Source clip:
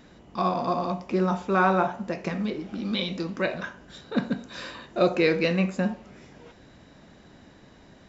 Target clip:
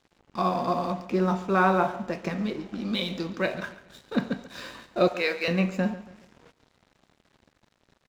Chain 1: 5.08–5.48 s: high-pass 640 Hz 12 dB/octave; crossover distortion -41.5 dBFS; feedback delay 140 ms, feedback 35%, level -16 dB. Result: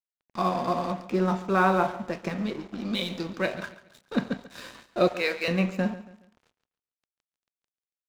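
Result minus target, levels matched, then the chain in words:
crossover distortion: distortion +5 dB
5.08–5.48 s: high-pass 640 Hz 12 dB/octave; crossover distortion -48 dBFS; feedback delay 140 ms, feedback 35%, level -16 dB

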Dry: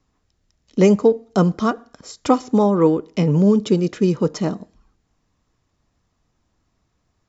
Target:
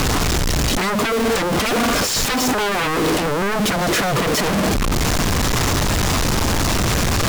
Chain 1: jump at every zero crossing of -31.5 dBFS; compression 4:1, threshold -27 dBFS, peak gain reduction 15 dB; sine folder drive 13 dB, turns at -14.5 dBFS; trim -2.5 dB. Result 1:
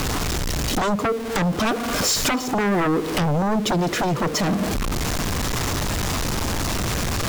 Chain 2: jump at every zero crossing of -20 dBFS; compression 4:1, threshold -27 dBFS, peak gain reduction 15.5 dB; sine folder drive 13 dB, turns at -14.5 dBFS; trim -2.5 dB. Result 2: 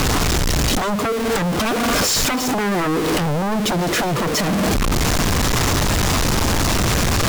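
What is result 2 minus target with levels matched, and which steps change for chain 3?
compression: peak gain reduction +4.5 dB
change: compression 4:1, threshold -21 dBFS, peak gain reduction 11 dB

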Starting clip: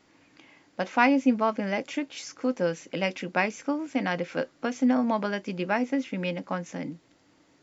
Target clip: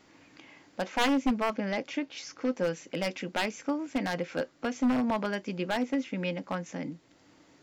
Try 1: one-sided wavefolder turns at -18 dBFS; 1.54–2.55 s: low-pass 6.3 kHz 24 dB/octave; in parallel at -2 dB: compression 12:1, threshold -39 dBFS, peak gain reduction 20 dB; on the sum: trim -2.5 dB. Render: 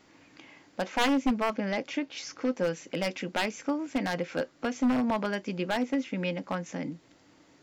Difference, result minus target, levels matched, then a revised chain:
compression: peak gain reduction -11 dB
one-sided wavefolder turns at -18 dBFS; 1.54–2.55 s: low-pass 6.3 kHz 24 dB/octave; in parallel at -2 dB: compression 12:1, threshold -51 dBFS, peak gain reduction 31 dB; on the sum: trim -2.5 dB

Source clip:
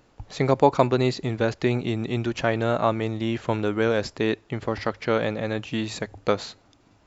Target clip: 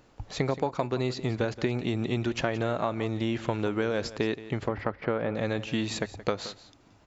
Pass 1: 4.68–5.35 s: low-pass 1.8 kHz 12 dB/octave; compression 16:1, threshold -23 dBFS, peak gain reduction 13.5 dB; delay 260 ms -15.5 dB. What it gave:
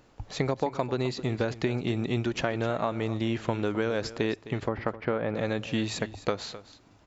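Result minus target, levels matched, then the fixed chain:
echo 86 ms late
4.68–5.35 s: low-pass 1.8 kHz 12 dB/octave; compression 16:1, threshold -23 dBFS, peak gain reduction 13.5 dB; delay 174 ms -15.5 dB

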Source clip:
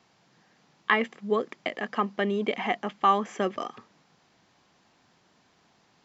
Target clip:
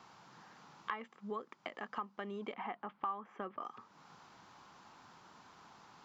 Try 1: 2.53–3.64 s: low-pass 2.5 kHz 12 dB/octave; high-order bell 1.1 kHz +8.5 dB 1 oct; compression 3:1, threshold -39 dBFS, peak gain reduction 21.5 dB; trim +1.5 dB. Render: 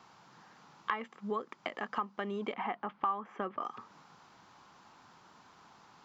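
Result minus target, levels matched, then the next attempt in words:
compression: peak gain reduction -6 dB
2.53–3.64 s: low-pass 2.5 kHz 12 dB/octave; high-order bell 1.1 kHz +8.5 dB 1 oct; compression 3:1, threshold -48 dBFS, peak gain reduction 27.5 dB; trim +1.5 dB

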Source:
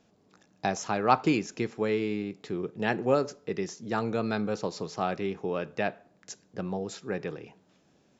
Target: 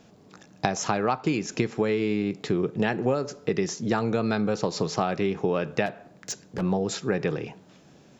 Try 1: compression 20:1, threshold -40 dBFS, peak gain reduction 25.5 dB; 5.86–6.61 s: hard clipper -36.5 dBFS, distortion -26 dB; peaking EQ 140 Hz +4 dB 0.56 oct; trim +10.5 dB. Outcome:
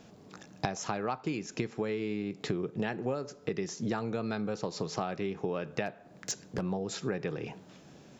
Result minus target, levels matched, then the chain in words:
compression: peak gain reduction +8.5 dB
compression 20:1, threshold -31 dBFS, peak gain reduction 17 dB; 5.86–6.61 s: hard clipper -36.5 dBFS, distortion -22 dB; peaking EQ 140 Hz +4 dB 0.56 oct; trim +10.5 dB

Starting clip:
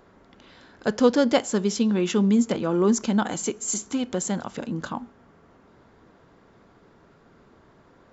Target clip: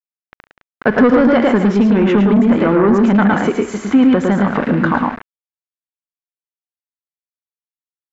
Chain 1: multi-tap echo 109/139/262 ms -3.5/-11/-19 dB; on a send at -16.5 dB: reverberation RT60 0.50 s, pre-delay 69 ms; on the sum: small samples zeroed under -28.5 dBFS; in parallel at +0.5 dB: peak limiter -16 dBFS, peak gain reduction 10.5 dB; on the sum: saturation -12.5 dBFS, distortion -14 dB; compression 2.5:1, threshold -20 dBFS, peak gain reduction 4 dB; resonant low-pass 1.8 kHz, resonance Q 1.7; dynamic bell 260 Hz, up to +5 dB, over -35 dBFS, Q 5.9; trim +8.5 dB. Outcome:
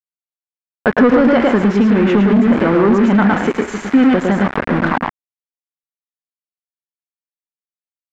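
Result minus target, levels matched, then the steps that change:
small samples zeroed: distortion +11 dB
change: small samples zeroed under -38.5 dBFS

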